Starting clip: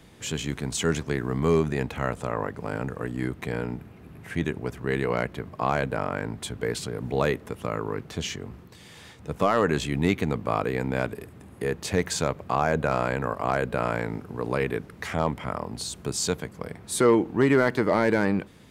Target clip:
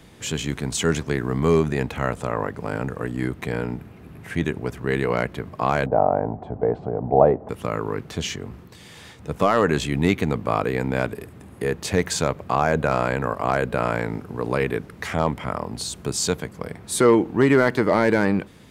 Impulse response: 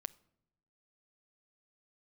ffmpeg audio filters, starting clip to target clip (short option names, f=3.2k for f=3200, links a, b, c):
-filter_complex "[0:a]asettb=1/sr,asplit=3[a][b][c];[a]atrim=end=5.864[d];[b]atrim=start=5.86:end=7.49,asetpts=PTS-STARTPTS,afade=t=in:d=0.004:c=qsin,afade=t=out:st=1.626:d=0.004:c=qsin,lowpass=f=730:t=q:w=4.9[e];[c]atrim=start=7.486[f];[d][e]acrossfade=d=0.004:c1=hsin:c2=qsin[g];[g][f]acrossfade=d=0.004:c1=qsin:c2=hsin,volume=3.5dB"